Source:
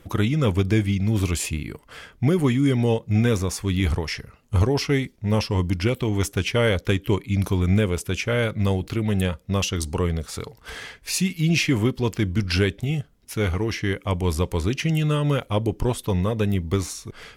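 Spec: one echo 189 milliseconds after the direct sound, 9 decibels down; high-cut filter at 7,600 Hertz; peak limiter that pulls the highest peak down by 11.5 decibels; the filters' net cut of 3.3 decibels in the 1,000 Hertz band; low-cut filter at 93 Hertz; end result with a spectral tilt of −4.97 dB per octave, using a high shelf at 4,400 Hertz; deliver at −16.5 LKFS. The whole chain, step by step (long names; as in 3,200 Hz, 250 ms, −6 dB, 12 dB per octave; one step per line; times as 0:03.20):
high-pass filter 93 Hz
low-pass filter 7,600 Hz
parametric band 1,000 Hz −4.5 dB
high-shelf EQ 4,400 Hz +6 dB
brickwall limiter −19 dBFS
single-tap delay 189 ms −9 dB
level +12.5 dB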